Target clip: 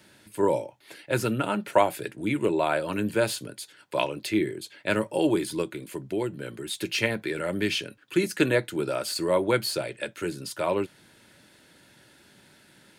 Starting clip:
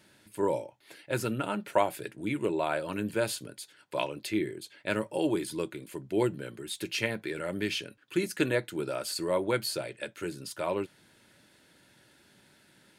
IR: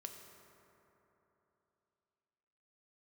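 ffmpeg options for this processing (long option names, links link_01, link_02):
-filter_complex "[0:a]asettb=1/sr,asplit=3[link_01][link_02][link_03];[link_01]atrim=end=5.624[link_04];[link_02]atrim=start=5.62:end=6.58,asetpts=PTS-STARTPTS,afade=type=in:duration=0.004:curve=qsin,afade=type=out:start_time=0.956:duration=0.004:curve=qsin,acompressor=threshold=-33dB:ratio=2.5[link_05];[link_03]atrim=start=6.576[link_06];[link_04][link_05]acrossfade=duration=0.004:curve1=hsin:curve2=qsin[link_07];[link_07][link_06]acrossfade=duration=0.004:curve1=qsin:curve2=hsin,acrossover=split=200|5100[link_08][link_09][link_10];[link_10]asoftclip=type=tanh:threshold=-35dB[link_11];[link_08][link_09][link_11]amix=inputs=3:normalize=0,volume=5dB"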